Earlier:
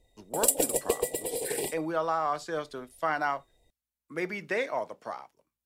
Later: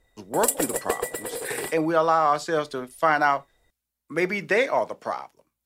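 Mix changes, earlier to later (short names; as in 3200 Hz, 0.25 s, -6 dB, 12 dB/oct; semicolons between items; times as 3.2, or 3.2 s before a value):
speech +8.5 dB; background: remove Butterworth band-stop 1400 Hz, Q 0.89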